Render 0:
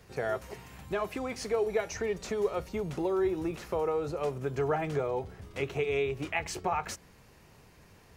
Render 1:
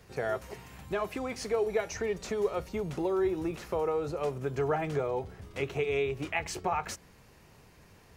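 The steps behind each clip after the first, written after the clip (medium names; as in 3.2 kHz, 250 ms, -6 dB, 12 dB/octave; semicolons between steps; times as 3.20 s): no audible change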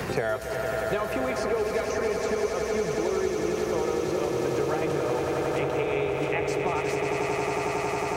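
echo with a slow build-up 91 ms, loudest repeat 8, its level -8.5 dB; three bands compressed up and down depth 100%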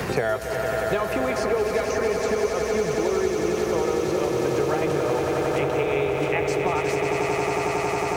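companded quantiser 8-bit; trim +3.5 dB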